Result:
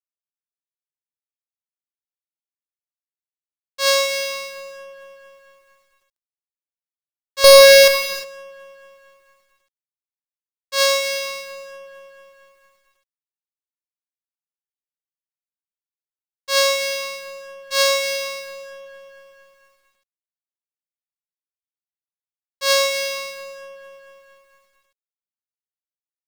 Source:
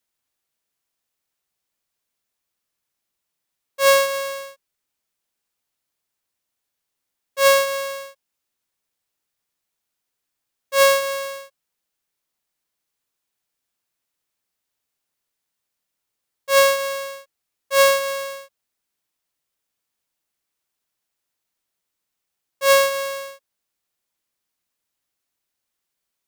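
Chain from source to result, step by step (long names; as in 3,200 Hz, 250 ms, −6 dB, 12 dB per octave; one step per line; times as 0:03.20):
running median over 5 samples
in parallel at −3 dB: downward compressor 8 to 1, threshold −28 dBFS, peak gain reduction 16.5 dB
on the sum: parametric band 4,600 Hz +12 dB 1.1 octaves
on a send: delay with a low-pass on its return 228 ms, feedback 75%, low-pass 1,400 Hz, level −10 dB
on the sum: dead-zone distortion −39 dBFS
parametric band 530 Hz −3 dB 0.74 octaves
0:07.44–0:07.88: leveller curve on the samples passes 5
reverb whose tail is shaped and stops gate 380 ms flat, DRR 6.5 dB
bit reduction 10 bits
level −5.5 dB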